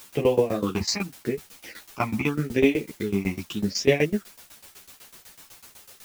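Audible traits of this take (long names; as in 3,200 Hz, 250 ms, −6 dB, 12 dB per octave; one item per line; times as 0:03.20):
phaser sweep stages 8, 0.83 Hz, lowest notch 450–1,400 Hz
a quantiser's noise floor 8 bits, dither triangular
tremolo saw down 8 Hz, depth 95%
a shimmering, thickened sound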